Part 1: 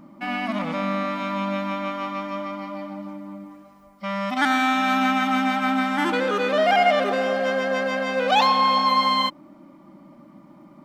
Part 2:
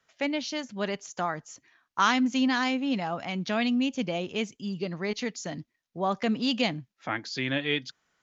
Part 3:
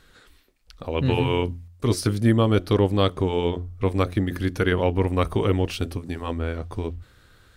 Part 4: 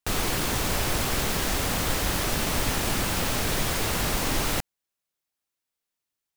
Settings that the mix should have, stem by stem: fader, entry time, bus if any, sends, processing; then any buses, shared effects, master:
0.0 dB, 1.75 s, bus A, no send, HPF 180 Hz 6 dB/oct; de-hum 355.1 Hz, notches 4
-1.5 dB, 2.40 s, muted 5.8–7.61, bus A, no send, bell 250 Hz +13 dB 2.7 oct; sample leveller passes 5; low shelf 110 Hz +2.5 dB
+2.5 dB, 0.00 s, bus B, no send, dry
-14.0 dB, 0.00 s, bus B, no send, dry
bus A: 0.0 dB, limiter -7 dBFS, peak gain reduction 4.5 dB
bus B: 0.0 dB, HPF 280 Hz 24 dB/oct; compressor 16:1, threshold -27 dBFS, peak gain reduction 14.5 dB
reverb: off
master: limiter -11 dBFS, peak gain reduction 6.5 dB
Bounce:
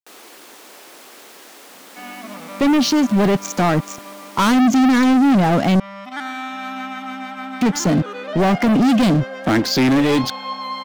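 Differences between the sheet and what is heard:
stem 1 0.0 dB -> -7.5 dB; stem 3: muted

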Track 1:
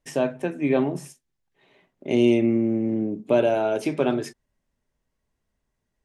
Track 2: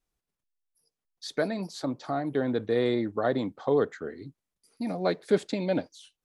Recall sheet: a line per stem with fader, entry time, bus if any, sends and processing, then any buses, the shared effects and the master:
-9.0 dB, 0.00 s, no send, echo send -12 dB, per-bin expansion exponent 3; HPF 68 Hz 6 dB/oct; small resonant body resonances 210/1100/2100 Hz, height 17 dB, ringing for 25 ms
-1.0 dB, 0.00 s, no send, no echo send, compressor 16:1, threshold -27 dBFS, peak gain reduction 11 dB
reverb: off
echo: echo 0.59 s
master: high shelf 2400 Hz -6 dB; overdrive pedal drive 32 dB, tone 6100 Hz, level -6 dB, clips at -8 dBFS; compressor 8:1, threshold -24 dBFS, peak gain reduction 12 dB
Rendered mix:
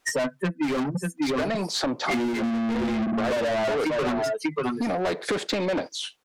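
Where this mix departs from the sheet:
stem 1 -9.0 dB -> +1.5 dB; stem 2: missing compressor 16:1, threshold -27 dBFS, peak gain reduction 11 dB

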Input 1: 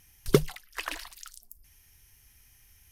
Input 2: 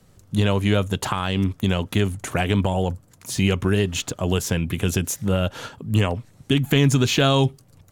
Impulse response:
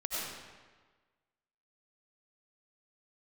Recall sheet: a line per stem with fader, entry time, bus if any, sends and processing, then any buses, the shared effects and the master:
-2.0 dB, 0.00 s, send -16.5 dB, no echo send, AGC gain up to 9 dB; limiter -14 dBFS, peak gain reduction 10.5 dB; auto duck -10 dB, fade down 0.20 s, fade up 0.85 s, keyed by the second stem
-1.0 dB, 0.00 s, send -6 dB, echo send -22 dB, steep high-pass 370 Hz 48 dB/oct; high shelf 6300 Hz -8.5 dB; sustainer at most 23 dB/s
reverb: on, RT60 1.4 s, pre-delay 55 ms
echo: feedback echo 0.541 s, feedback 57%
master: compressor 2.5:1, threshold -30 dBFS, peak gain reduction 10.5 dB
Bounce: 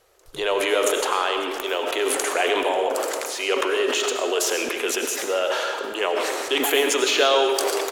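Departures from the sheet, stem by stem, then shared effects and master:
stem 1 -2.0 dB -> -11.0 dB; master: missing compressor 2.5:1, threshold -30 dBFS, peak gain reduction 10.5 dB

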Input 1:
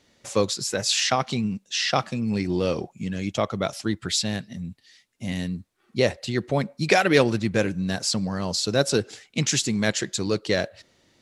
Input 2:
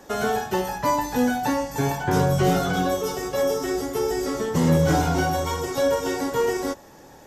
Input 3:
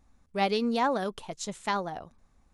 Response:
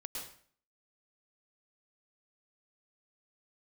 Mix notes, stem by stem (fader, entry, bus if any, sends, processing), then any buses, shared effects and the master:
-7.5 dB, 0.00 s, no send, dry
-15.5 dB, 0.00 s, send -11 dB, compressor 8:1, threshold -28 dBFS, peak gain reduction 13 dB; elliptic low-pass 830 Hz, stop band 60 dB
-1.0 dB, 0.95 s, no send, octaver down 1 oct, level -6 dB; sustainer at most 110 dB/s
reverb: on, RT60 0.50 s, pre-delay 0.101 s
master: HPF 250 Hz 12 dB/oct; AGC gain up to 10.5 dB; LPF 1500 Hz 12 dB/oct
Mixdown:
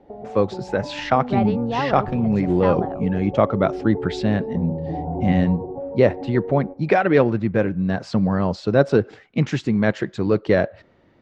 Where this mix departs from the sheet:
stem 1 -7.5 dB -> +1.5 dB; stem 2 -15.5 dB -> -5.0 dB; master: missing HPF 250 Hz 12 dB/oct

